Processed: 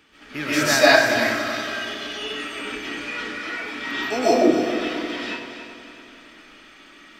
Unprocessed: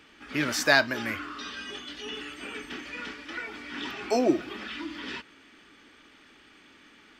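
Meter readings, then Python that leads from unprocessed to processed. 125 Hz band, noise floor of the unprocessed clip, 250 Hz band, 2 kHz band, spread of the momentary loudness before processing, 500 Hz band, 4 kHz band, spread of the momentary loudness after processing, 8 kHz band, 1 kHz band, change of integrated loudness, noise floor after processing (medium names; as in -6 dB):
+5.5 dB, -56 dBFS, +7.5 dB, +7.5 dB, 16 LU, +10.0 dB, +8.0 dB, 16 LU, +8.5 dB, +9.5 dB, +8.5 dB, -48 dBFS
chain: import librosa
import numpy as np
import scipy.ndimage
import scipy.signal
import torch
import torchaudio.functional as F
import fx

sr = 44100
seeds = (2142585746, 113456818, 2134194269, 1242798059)

y = fx.high_shelf(x, sr, hz=8200.0, db=4.0)
y = fx.echo_heads(y, sr, ms=93, heads='first and third', feedback_pct=63, wet_db=-11)
y = fx.rev_freeverb(y, sr, rt60_s=0.67, hf_ratio=0.6, predelay_ms=100, drr_db=-9.5)
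y = F.gain(torch.from_numpy(y), -2.5).numpy()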